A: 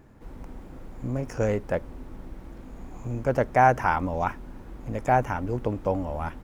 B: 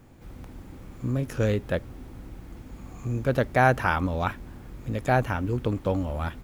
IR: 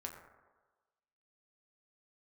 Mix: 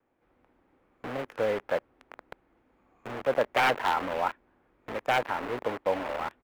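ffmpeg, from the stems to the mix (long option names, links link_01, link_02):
-filter_complex "[0:a]acrusher=bits=4:mix=0:aa=0.000001,aeval=exprs='(mod(4.22*val(0)+1,2)-1)/4.22':channel_layout=same,volume=-1dB[link_01];[1:a]volume=-1,adelay=2.5,volume=-14.5dB[link_02];[link_01][link_02]amix=inputs=2:normalize=0,acrossover=split=310 2800:gain=0.112 1 0.1[link_03][link_04][link_05];[link_03][link_04][link_05]amix=inputs=3:normalize=0"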